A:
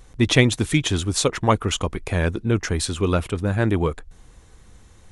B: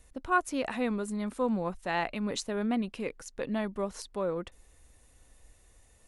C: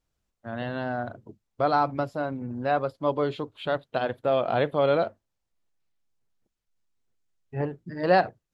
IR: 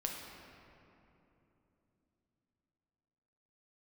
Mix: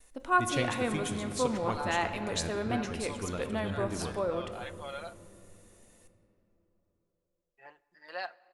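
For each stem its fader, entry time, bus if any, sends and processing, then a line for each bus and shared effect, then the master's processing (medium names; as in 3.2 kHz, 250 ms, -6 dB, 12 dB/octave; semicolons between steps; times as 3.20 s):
-10.5 dB, 0.20 s, send -11.5 dB, auto duck -12 dB, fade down 0.25 s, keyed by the second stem
-3.0 dB, 0.00 s, send -3.5 dB, gate with hold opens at -55 dBFS; peaking EQ 75 Hz -14.5 dB 2.3 oct
-12.5 dB, 0.05 s, send -19 dB, high-pass 1.1 kHz 12 dB/octave; comb 5.7 ms, depth 53%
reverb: on, RT60 3.2 s, pre-delay 7 ms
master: treble shelf 8.1 kHz +4 dB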